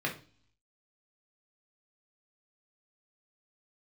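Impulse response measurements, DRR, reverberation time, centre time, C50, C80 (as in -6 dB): -1.5 dB, 0.40 s, 17 ms, 10.5 dB, 17.0 dB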